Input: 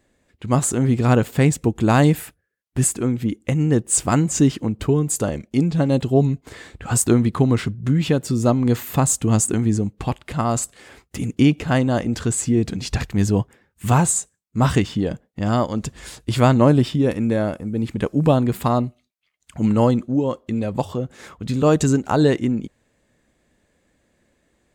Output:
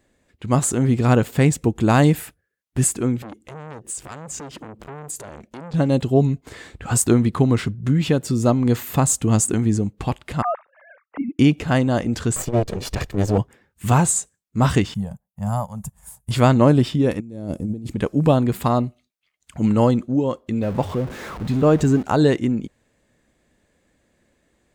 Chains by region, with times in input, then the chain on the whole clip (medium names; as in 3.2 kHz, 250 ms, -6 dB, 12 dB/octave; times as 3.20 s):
3.22–5.74 s: compression 12:1, threshold -26 dBFS + transformer saturation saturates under 1.9 kHz
10.42–11.39 s: formants replaced by sine waves + low-pass 1.7 kHz 24 dB/octave + peaking EQ 280 Hz -5 dB 1.8 oct
12.36–13.38 s: comb filter that takes the minimum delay 1.7 ms + peaking EQ 500 Hz +5.5 dB 1.8 oct + transformer saturation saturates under 260 Hz
14.94–16.31 s: FFT filter 200 Hz 0 dB, 300 Hz -29 dB, 610 Hz -6 dB, 870 Hz +1 dB, 1.3 kHz -9 dB, 2.1 kHz -14 dB, 4.3 kHz -17 dB, 11 kHz +14 dB + upward expansion, over -45 dBFS
17.20–17.93 s: FFT filter 300 Hz 0 dB, 1.6 kHz -18 dB, 6.5 kHz -2 dB + compressor with a negative ratio -27 dBFS, ratio -0.5
20.62–22.03 s: jump at every zero crossing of -28 dBFS + treble shelf 3.2 kHz -11.5 dB
whole clip: none